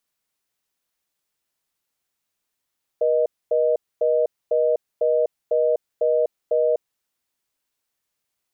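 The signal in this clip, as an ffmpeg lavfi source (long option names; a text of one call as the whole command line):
ffmpeg -f lavfi -i "aevalsrc='0.112*(sin(2*PI*480*t)+sin(2*PI*620*t))*clip(min(mod(t,0.5),0.25-mod(t,0.5))/0.005,0,1)':duration=3.98:sample_rate=44100" out.wav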